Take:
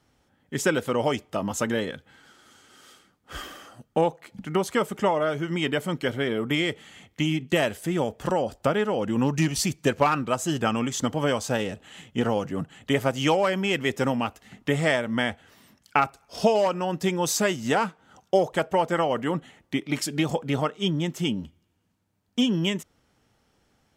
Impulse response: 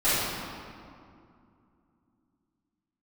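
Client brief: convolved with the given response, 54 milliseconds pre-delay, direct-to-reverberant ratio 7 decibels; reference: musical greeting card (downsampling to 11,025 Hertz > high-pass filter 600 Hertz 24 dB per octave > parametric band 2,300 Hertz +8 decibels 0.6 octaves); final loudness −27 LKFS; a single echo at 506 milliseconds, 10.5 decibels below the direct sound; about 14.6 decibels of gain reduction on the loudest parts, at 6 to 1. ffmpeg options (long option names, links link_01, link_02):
-filter_complex "[0:a]acompressor=threshold=-32dB:ratio=6,aecho=1:1:506:0.299,asplit=2[link_01][link_02];[1:a]atrim=start_sample=2205,adelay=54[link_03];[link_02][link_03]afir=irnorm=-1:irlink=0,volume=-23.5dB[link_04];[link_01][link_04]amix=inputs=2:normalize=0,aresample=11025,aresample=44100,highpass=frequency=600:width=0.5412,highpass=frequency=600:width=1.3066,equalizer=frequency=2300:width_type=o:width=0.6:gain=8,volume=10.5dB"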